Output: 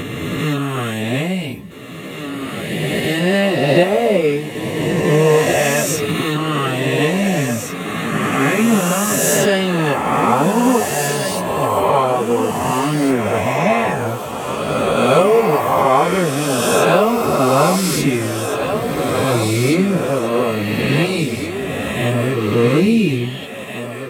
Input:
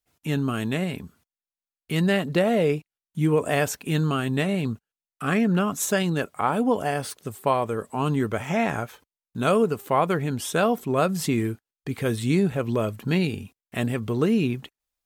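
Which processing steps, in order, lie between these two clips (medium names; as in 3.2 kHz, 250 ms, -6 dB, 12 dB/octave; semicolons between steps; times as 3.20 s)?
reverse spectral sustain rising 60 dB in 1.87 s; peaking EQ 1.5 kHz -7.5 dB 0.27 oct; on a send: thinning echo 1076 ms, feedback 40%, high-pass 230 Hz, level -7 dB; on the sum: plain phase-vocoder stretch 1.6×; trim +7.5 dB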